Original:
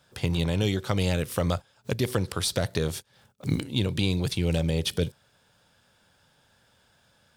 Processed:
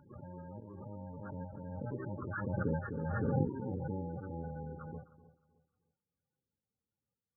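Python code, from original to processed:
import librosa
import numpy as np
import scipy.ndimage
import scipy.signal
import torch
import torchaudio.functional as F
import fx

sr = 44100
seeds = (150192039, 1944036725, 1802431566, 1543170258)

y = fx.bit_reversed(x, sr, seeds[0], block=64)
y = fx.doppler_pass(y, sr, speed_mps=14, closest_m=3.6, pass_at_s=3.03)
y = fx.brickwall_lowpass(y, sr, high_hz=1900.0)
y = y + 10.0 ** (-17.5 / 20.0) * np.pad(y, (int(253 * sr / 1000.0), 0))[:len(y)]
y = fx.dynamic_eq(y, sr, hz=1100.0, q=2.8, threshold_db=-54.0, ratio=4.0, max_db=-4)
y = scipy.signal.sosfilt(scipy.signal.butter(2, 46.0, 'highpass', fs=sr, output='sos'), y)
y = fx.spec_topn(y, sr, count=16)
y = fx.low_shelf(y, sr, hz=220.0, db=-12.0)
y = fx.volume_shaper(y, sr, bpm=100, per_beat=1, depth_db=-9, release_ms=133.0, shape='slow start')
y = fx.echo_feedback(y, sr, ms=309, feedback_pct=30, wet_db=-17.5)
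y = fx.pre_swell(y, sr, db_per_s=22.0)
y = F.gain(torch.from_numpy(y), 7.0).numpy()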